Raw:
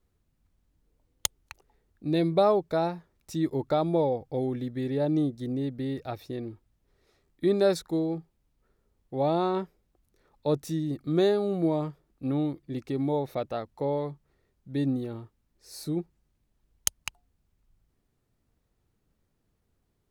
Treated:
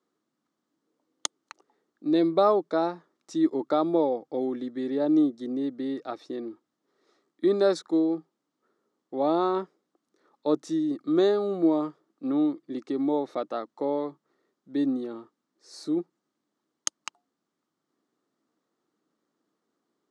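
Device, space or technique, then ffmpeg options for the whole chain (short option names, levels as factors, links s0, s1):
television speaker: -af "highpass=f=220:w=0.5412,highpass=f=220:w=1.3066,equalizer=f=310:t=q:w=4:g=6,equalizer=f=1200:t=q:w=4:g=7,equalizer=f=2500:t=q:w=4:g=-7,lowpass=f=7800:w=0.5412,lowpass=f=7800:w=1.3066"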